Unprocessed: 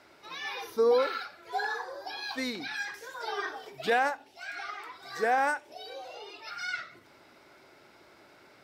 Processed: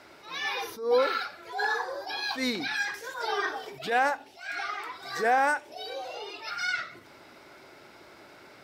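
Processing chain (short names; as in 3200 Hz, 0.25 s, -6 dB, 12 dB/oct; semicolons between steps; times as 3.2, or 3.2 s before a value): in parallel at +2 dB: limiter -24.5 dBFS, peak gain reduction 8.5 dB; on the sum: attack slew limiter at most 130 dB/s; gain -1.5 dB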